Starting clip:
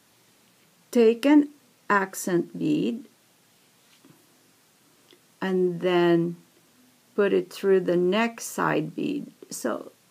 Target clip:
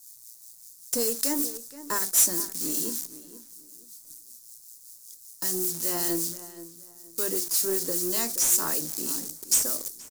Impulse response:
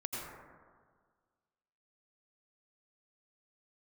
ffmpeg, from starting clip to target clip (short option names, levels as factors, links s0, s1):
-filter_complex "[0:a]bandreject=f=50:t=h:w=6,bandreject=f=100:t=h:w=6,bandreject=f=150:t=h:w=6,bandreject=f=200:t=h:w=6,bandreject=f=250:t=h:w=6,bandreject=f=300:t=h:w=6,bandreject=f=350:t=h:w=6,agate=range=0.501:threshold=0.00251:ratio=16:detection=peak,equalizer=f=120:t=o:w=0.35:g=12.5,acrossover=split=200|1700[s0][s1][s2];[s0]acompressor=threshold=0.00891:ratio=10[s3];[s3][s1][s2]amix=inputs=3:normalize=0,acrusher=bits=8:dc=4:mix=0:aa=0.000001,aexciter=amount=13.2:drive=9.9:freq=4600,asoftclip=type=tanh:threshold=0.398,acrossover=split=1700[s4][s5];[s4]aeval=exprs='val(0)*(1-0.5/2+0.5/2*cos(2*PI*5.2*n/s))':c=same[s6];[s5]aeval=exprs='val(0)*(1-0.5/2-0.5/2*cos(2*PI*5.2*n/s))':c=same[s7];[s6][s7]amix=inputs=2:normalize=0,asplit=2[s8][s9];[s9]adelay=474,lowpass=f=2100:p=1,volume=0.2,asplit=2[s10][s11];[s11]adelay=474,lowpass=f=2100:p=1,volume=0.28,asplit=2[s12][s13];[s13]adelay=474,lowpass=f=2100:p=1,volume=0.28[s14];[s10][s12][s14]amix=inputs=3:normalize=0[s15];[s8][s15]amix=inputs=2:normalize=0,volume=0.447"